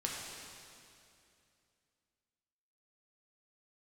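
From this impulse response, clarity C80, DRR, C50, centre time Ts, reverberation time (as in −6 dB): 1.0 dB, −3.5 dB, 0.0 dB, 122 ms, 2.6 s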